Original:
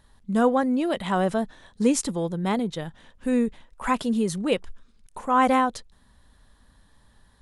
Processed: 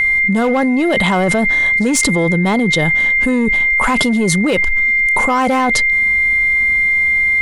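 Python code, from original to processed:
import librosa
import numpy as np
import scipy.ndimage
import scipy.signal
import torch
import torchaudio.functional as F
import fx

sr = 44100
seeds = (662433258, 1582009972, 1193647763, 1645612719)

p1 = 10.0 ** (-23.0 / 20.0) * (np.abs((x / 10.0 ** (-23.0 / 20.0) + 3.0) % 4.0 - 2.0) - 1.0)
p2 = x + (p1 * librosa.db_to_amplitude(-8.0))
p3 = p2 + 10.0 ** (-30.0 / 20.0) * np.sin(2.0 * np.pi * 2100.0 * np.arange(len(p2)) / sr)
p4 = fx.env_flatten(p3, sr, amount_pct=100)
y = p4 * librosa.db_to_amplitude(2.5)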